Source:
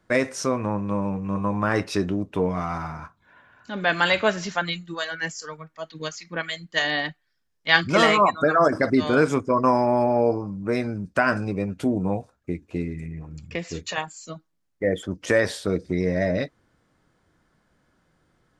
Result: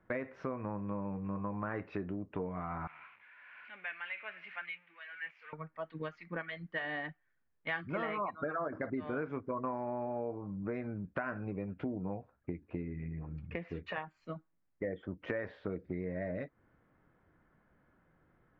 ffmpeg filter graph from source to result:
ffmpeg -i in.wav -filter_complex "[0:a]asettb=1/sr,asplit=3[link_01][link_02][link_03];[link_01]atrim=end=2.874[link_04];[link_02]atrim=start=2.87:end=5.53,asetpts=PTS-STARTPTS,afade=type=in:duration=0.004:curve=qsin,afade=type=out:start_time=2.656:duration=0.004:curve=qsin,aeval=exprs='val(0)+0.5*0.0266*sgn(val(0))':channel_layout=same,tremolo=f=1.2:d=0.57,bandpass=frequency=2400:width_type=q:width=3.8[link_05];[link_03]atrim=start=5.526[link_06];[link_04][link_05]acrossfade=duration=0.004:curve1=hsin:curve2=qsin[link_07];[link_07][link_06]acrossfade=duration=0.004:curve1=qsin:curve2=hsin,lowpass=frequency=2300:width=0.5412,lowpass=frequency=2300:width=1.3066,acompressor=threshold=-33dB:ratio=4,volume=-3.5dB" out.wav

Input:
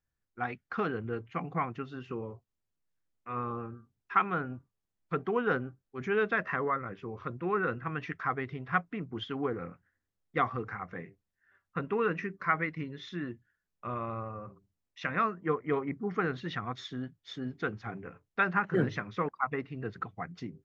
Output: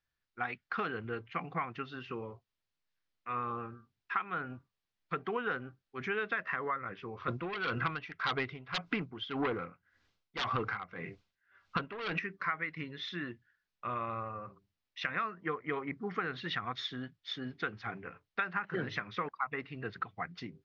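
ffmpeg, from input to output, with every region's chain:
ffmpeg -i in.wav -filter_complex "[0:a]asettb=1/sr,asplit=3[link_01][link_02][link_03];[link_01]atrim=end=7.284[link_04];[link_02]atrim=start=7.28:end=12.19,asetpts=PTS-STARTPTS,afade=type=in:duration=0.004:curve=qsin,afade=type=out:start_time=4.906:duration=0.004:curve=qsin,bandreject=frequency=1800:width=8.1,aeval=exprs='0.188*sin(PI/2*3.98*val(0)/0.188)':channel_layout=same,aeval=exprs='val(0)*pow(10,-21*(0.5-0.5*cos(2*PI*1.8*n/s))/20)':channel_layout=same[link_05];[link_03]atrim=start=12.186[link_06];[link_04][link_05]acrossfade=duration=0.004:curve1=hsin:curve2=qsin[link_07];[link_07][link_06]acrossfade=duration=0.004:curve1=qsin:curve2=hsin,lowpass=frequency=4900:width=0.5412,lowpass=frequency=4900:width=1.3066,tiltshelf=frequency=970:gain=-6,acompressor=threshold=-32dB:ratio=6,volume=1dB" out.wav

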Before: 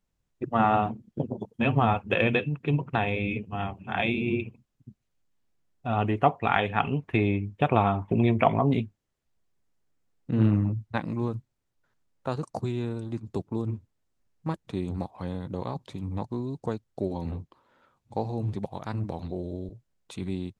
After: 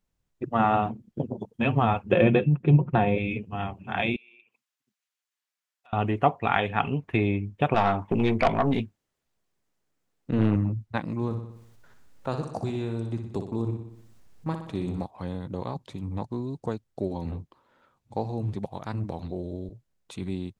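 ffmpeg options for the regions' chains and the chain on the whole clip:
ffmpeg -i in.wav -filter_complex "[0:a]asettb=1/sr,asplit=3[link_01][link_02][link_03];[link_01]atrim=end=2.114[link_04];[link_02]atrim=start=2.11:end=3.18,asetpts=PTS-STARTPTS,afade=type=in:duration=0.004:curve=qsin,afade=type=out:start_time=1.066:duration=0.004:curve=qsin,tiltshelf=frequency=1100:gain=6.5,aecho=1:1:5.6:0.44,atrim=end_sample=47187[link_05];[link_03]atrim=start=3.176[link_06];[link_04][link_05]acrossfade=duration=0.004:curve1=hsin:curve2=qsin[link_07];[link_07][link_06]acrossfade=duration=0.004:curve1=qsin:curve2=hsin,asettb=1/sr,asplit=3[link_08][link_09][link_10];[link_08]atrim=end=4.164[link_11];[link_09]atrim=start=4.16:end=5.93,asetpts=PTS-STARTPTS,afade=type=in:duration=0.004:curve=qsin,afade=type=out:start_time=1.766:duration=0.004:curve=qsin,highpass=1300,acompressor=threshold=-58dB:ratio=3:attack=3.2:release=140:knee=1:detection=peak[link_12];[link_10]atrim=start=5.926[link_13];[link_11][link_12]acrossfade=duration=0.004:curve1=hsin:curve2=qsin[link_14];[link_14][link_13]acrossfade=duration=0.004:curve1=qsin:curve2=hsin,asettb=1/sr,asplit=3[link_15][link_16][link_17];[link_15]atrim=end=7.744[link_18];[link_16]atrim=start=7.74:end=10.56,asetpts=PTS-STARTPTS,afade=type=in:duration=0.004:curve=qsin,afade=type=out:start_time=2.816:duration=0.004:curve=qsin,lowshelf=frequency=130:gain=-9,acontrast=34,aeval=exprs='(tanh(5.01*val(0)+0.5)-tanh(0.5))/5.01':channel_layout=same[link_19];[link_17]atrim=start=10.556[link_20];[link_18][link_19]acrossfade=duration=0.004:curve1=hsin:curve2=qsin[link_21];[link_21][link_20]acrossfade=duration=0.004:curve1=qsin:curve2=hsin,asettb=1/sr,asplit=3[link_22][link_23][link_24];[link_22]atrim=end=11.254[link_25];[link_23]atrim=start=11.25:end=15.02,asetpts=PTS-STARTPTS,afade=type=in:duration=0.004:curve=qsin,afade=type=out:start_time=3.766:duration=0.004:curve=qsin,acompressor=mode=upward:threshold=-42dB:ratio=2.5:attack=3.2:release=140:knee=2.83:detection=peak,aecho=1:1:61|122|183|244|305|366|427:0.398|0.231|0.134|0.0777|0.0451|0.0261|0.0152,atrim=end_sample=166257[link_26];[link_24]atrim=start=15.016[link_27];[link_25][link_26]acrossfade=duration=0.004:curve1=hsin:curve2=qsin[link_28];[link_28][link_27]acrossfade=duration=0.004:curve1=qsin:curve2=hsin" out.wav

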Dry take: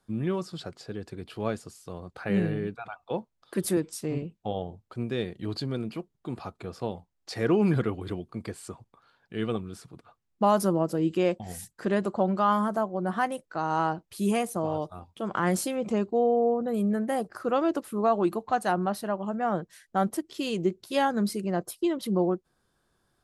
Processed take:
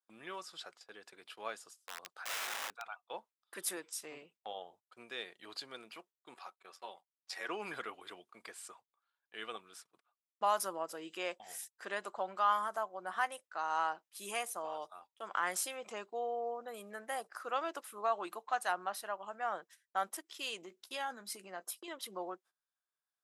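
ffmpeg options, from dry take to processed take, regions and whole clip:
ffmpeg -i in.wav -filter_complex "[0:a]asettb=1/sr,asplit=3[link_01][link_02][link_03];[link_01]atrim=end=1.564[link_04];[link_02]atrim=start=1.56:end=2.82,asetpts=PTS-STARTPTS,afade=type=in:duration=0.004:curve=qsin,afade=type=out:start_time=1.256:duration=0.004:curve=qsin,equalizer=frequency=2200:width_type=o:width=0.51:gain=-5,aeval=exprs='(mod(28.2*val(0)+1,2)-1)/28.2':channel_layout=same[link_05];[link_03]atrim=start=2.816[link_06];[link_04][link_05]acrossfade=duration=0.004:curve1=hsin:curve2=qsin[link_07];[link_07][link_06]acrossfade=duration=0.004:curve1=qsin:curve2=hsin,asettb=1/sr,asplit=3[link_08][link_09][link_10];[link_08]atrim=end=6.344[link_11];[link_09]atrim=start=6.34:end=7.49,asetpts=PTS-STARTPTS,afade=type=in:duration=0.004:curve=qsin,afade=type=out:start_time=1.146:duration=0.004:curve=qsin,highpass=frequency=390:poles=1,aecho=1:1:5.3:0.6,atrim=end_sample=50715,tremolo=f=88:d=0.519[link_12];[link_10]atrim=start=7.486[link_13];[link_11][link_12]acrossfade=duration=0.004:curve1=hsin:curve2=qsin[link_14];[link_14][link_13]acrossfade=duration=0.004:curve1=qsin:curve2=hsin,asettb=1/sr,asplit=3[link_15][link_16][link_17];[link_15]atrim=end=20.624[link_18];[link_16]atrim=start=20.62:end=21.88,asetpts=PTS-STARTPTS,afade=type=in:duration=0.004:curve=qsin,afade=type=out:start_time=1.256:duration=0.004:curve=qsin,equalizer=frequency=240:width=2.9:gain=9,acompressor=threshold=-26dB:ratio=5:attack=3.2:release=140:knee=1:detection=peak,asplit=2[link_19][link_20];[link_20]adelay=16,volume=-12.5dB[link_21];[link_19][link_21]amix=inputs=2:normalize=0,atrim=end_sample=55566[link_22];[link_17]atrim=start=21.876[link_23];[link_18][link_22]acrossfade=duration=0.004:curve1=hsin:curve2=qsin[link_24];[link_24][link_23]acrossfade=duration=0.004:curve1=qsin:curve2=hsin,bandreject=frequency=4400:width=13,agate=range=-18dB:threshold=-45dB:ratio=16:detection=peak,highpass=990,volume=-3dB" out.wav

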